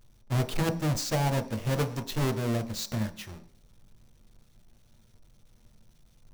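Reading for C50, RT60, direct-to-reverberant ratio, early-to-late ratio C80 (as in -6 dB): 14.0 dB, 0.45 s, 6.5 dB, 19.0 dB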